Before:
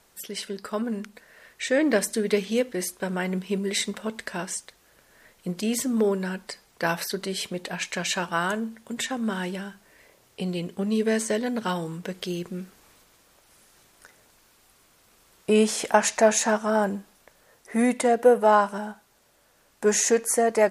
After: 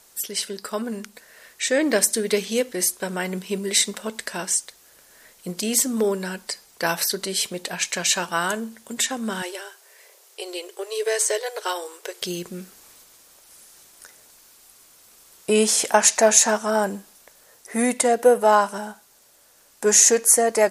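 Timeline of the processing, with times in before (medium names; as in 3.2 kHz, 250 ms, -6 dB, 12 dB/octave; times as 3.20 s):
9.42–12.22 s: brick-wall FIR high-pass 340 Hz
whole clip: tone controls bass -5 dB, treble +9 dB; trim +2 dB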